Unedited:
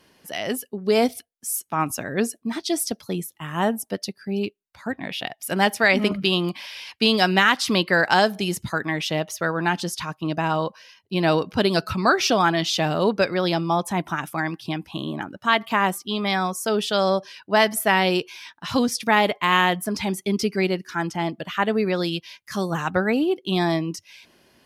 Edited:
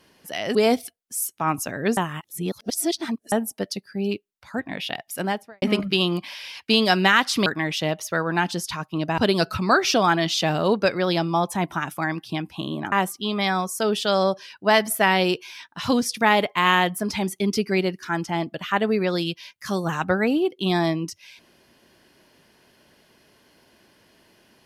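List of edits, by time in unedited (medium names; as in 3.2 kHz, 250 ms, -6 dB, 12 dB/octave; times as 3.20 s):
0.55–0.87 s: delete
2.29–3.64 s: reverse
5.37–5.94 s: studio fade out
7.78–8.75 s: delete
10.47–11.54 s: delete
15.28–15.78 s: delete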